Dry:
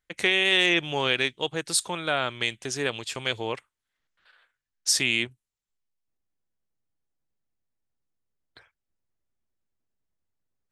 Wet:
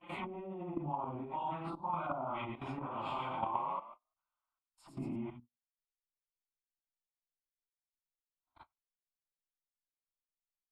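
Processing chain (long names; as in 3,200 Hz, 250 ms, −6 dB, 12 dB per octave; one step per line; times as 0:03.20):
random phases in long frames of 200 ms
mains-hum notches 60/120/180/240/300/360/420 Hz
treble cut that deepens with the level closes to 350 Hz, closed at −21.5 dBFS
graphic EQ with 10 bands 125 Hz −7 dB, 1,000 Hz +10 dB, 2,000 Hz −5 dB, 4,000 Hz −10 dB, 8,000 Hz −5 dB
0:02.86–0:05.16: echo with shifted repeats 111 ms, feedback 37%, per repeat +34 Hz, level −5 dB
output level in coarse steps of 14 dB
noise gate −58 dBFS, range −26 dB
compressor whose output falls as the input rises −33 dBFS, ratio −0.5
high-shelf EQ 2,500 Hz −9 dB
phaser with its sweep stopped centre 1,700 Hz, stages 6
level +6 dB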